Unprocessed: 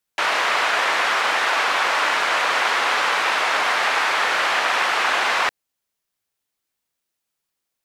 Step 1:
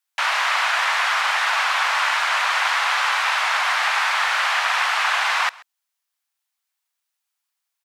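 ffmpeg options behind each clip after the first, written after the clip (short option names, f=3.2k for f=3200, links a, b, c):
-af "highpass=f=760:w=0.5412,highpass=f=760:w=1.3066,aecho=1:1:133:0.0708"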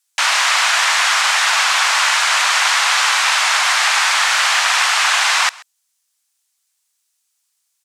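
-af "equalizer=f=7.7k:w=0.55:g=14,volume=2dB"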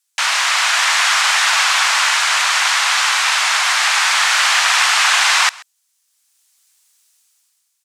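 -af "highpass=f=620:p=1,dynaudnorm=f=160:g=9:m=12dB,volume=-1dB"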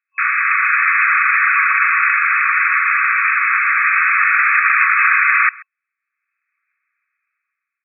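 -af "afftfilt=real='re*between(b*sr/4096,1100,2600)':imag='im*between(b*sr/4096,1100,2600)':win_size=4096:overlap=0.75,volume=3.5dB"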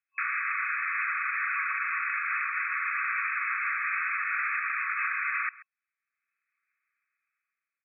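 -af "alimiter=limit=-11.5dB:level=0:latency=1:release=355,volume=-9dB"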